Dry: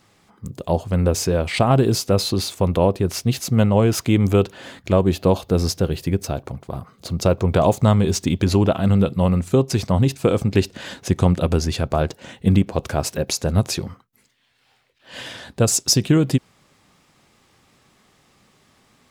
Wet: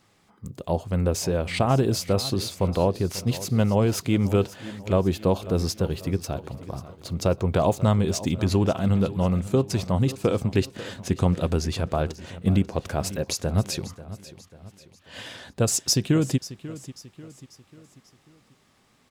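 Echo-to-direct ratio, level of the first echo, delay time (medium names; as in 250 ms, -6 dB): -15.0 dB, -16.0 dB, 541 ms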